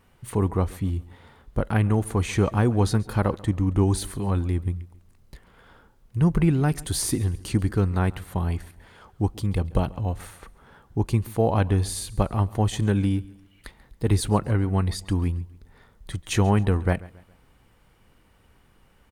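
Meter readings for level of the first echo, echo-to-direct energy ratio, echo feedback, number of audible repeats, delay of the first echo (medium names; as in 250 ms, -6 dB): -21.0 dB, -20.5 dB, 39%, 2, 137 ms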